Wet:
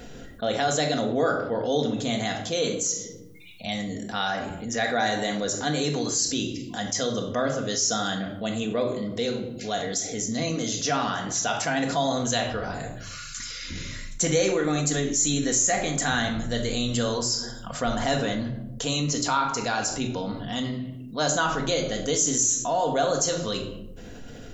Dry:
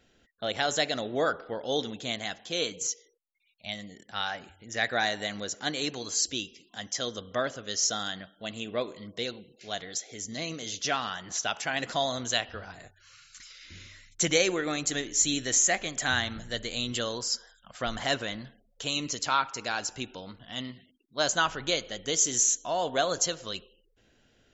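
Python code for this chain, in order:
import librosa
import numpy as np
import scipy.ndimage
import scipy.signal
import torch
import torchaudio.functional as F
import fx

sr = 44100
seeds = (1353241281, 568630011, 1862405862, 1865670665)

y = fx.peak_eq(x, sr, hz=2700.0, db=-8.0, octaves=2.0)
y = fx.room_shoebox(y, sr, seeds[0], volume_m3=790.0, walls='furnished', distance_m=1.8)
y = fx.env_flatten(y, sr, amount_pct=50)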